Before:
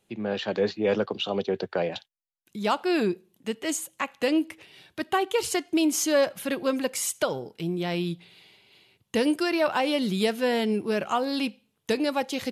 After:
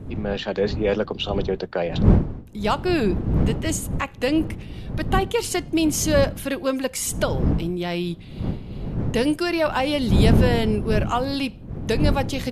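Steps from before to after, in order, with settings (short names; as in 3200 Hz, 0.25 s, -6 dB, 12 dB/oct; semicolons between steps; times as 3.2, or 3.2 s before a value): wind noise 170 Hz -27 dBFS; gain +2.5 dB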